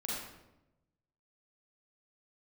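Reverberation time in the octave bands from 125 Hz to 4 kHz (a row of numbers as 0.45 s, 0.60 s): 1.4 s, 1.2 s, 1.0 s, 0.85 s, 0.75 s, 0.65 s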